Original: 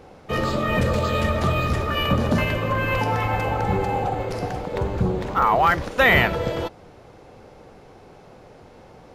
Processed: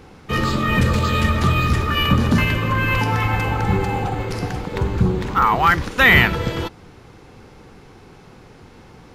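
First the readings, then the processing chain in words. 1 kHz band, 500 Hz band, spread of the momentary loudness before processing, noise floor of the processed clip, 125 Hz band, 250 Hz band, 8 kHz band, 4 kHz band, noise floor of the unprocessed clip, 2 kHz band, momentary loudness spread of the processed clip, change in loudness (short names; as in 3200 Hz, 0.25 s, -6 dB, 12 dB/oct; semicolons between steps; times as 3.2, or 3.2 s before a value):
+2.0 dB, -2.0 dB, 10 LU, -45 dBFS, +5.5 dB, +4.5 dB, +5.5 dB, +5.5 dB, -48 dBFS, +5.0 dB, 11 LU, +3.5 dB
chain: bell 610 Hz -12 dB 0.84 oct; gain +5.5 dB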